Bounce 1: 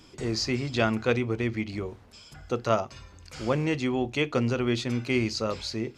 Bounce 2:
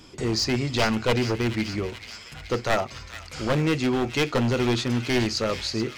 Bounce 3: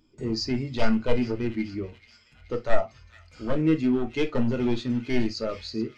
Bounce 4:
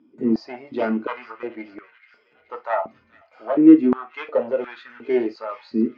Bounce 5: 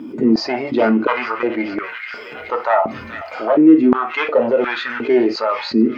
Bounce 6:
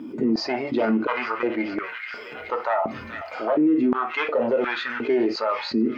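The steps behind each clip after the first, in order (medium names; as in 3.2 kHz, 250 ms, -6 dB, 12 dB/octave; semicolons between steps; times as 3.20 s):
one-sided wavefolder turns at -21.5 dBFS; feedback echo behind a high-pass 429 ms, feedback 71%, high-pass 1.7 kHz, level -10 dB; trim +4.5 dB
on a send at -5.5 dB: reverberation, pre-delay 3 ms; on the sum: spectral contrast expander 1.5:1
low-pass 2 kHz 12 dB/octave; step-sequenced high-pass 2.8 Hz 250–1500 Hz; trim +1.5 dB
level flattener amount 50%
peak limiter -9 dBFS, peak gain reduction 7.5 dB; trim -4.5 dB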